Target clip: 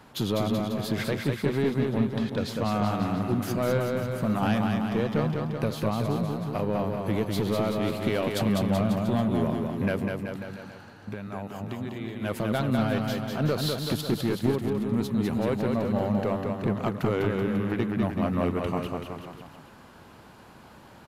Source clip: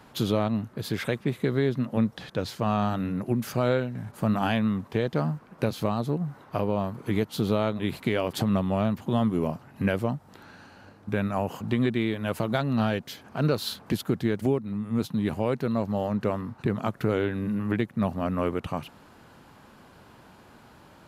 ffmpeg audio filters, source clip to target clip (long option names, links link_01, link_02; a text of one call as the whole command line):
ffmpeg -i in.wav -filter_complex "[0:a]asplit=3[link_01][link_02][link_03];[link_01]afade=type=out:start_time=9.99:duration=0.02[link_04];[link_02]acompressor=threshold=-33dB:ratio=6,afade=type=in:start_time=9.99:duration=0.02,afade=type=out:start_time=12.21:duration=0.02[link_05];[link_03]afade=type=in:start_time=12.21:duration=0.02[link_06];[link_04][link_05][link_06]amix=inputs=3:normalize=0,asoftclip=type=tanh:threshold=-17.5dB,aecho=1:1:200|380|542|687.8|819:0.631|0.398|0.251|0.158|0.1" out.wav